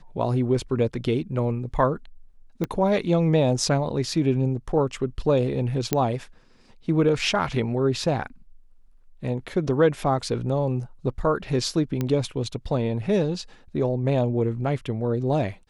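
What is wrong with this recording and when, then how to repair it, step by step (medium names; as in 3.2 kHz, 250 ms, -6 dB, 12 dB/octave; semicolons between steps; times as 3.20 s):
2.64 s: pop -14 dBFS
5.93 s: pop -6 dBFS
12.01 s: pop -13 dBFS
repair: de-click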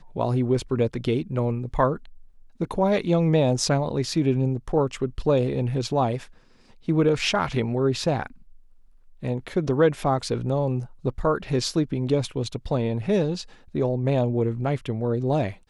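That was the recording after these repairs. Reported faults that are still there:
2.64 s: pop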